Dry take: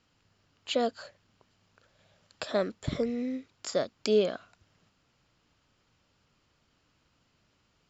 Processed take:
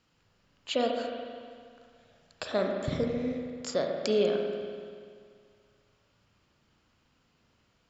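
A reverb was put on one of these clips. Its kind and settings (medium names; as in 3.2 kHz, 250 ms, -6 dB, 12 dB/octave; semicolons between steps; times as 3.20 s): spring tank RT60 2.1 s, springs 36/48 ms, chirp 65 ms, DRR 1.5 dB; trim -1 dB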